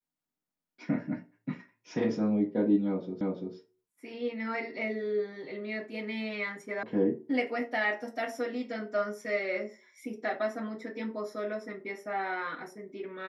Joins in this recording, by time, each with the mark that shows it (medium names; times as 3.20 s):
3.21 s: repeat of the last 0.34 s
6.83 s: sound stops dead